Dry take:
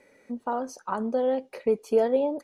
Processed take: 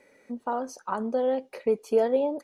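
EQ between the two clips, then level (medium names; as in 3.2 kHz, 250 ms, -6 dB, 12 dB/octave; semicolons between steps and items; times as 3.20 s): bass shelf 190 Hz -3.5 dB; 0.0 dB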